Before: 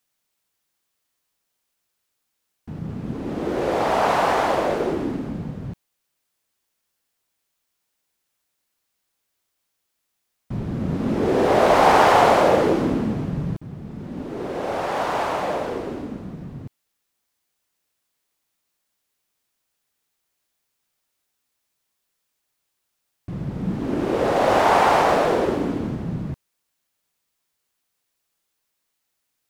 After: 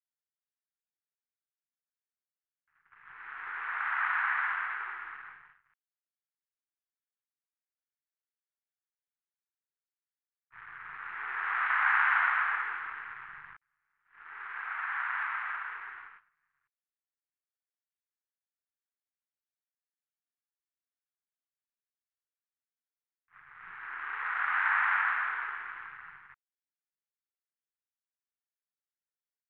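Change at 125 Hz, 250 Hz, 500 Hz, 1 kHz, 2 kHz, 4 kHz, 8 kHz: below −40 dB, below −40 dB, below −40 dB, −13.5 dB, −0.5 dB, −19.5 dB, below −35 dB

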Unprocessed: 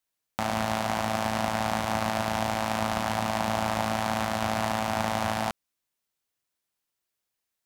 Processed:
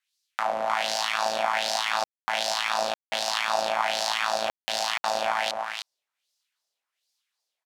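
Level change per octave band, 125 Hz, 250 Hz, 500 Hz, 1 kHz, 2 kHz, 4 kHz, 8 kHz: below −20 dB, −16.0 dB, +0.5 dB, +1.0 dB, +3.5 dB, +7.5 dB, +3.5 dB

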